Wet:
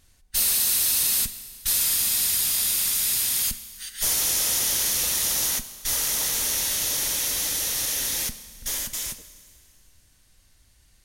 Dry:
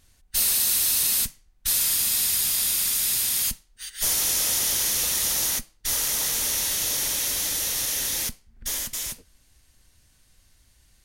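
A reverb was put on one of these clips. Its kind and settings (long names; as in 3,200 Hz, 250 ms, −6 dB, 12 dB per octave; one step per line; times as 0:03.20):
four-comb reverb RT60 2.2 s, combs from 29 ms, DRR 13.5 dB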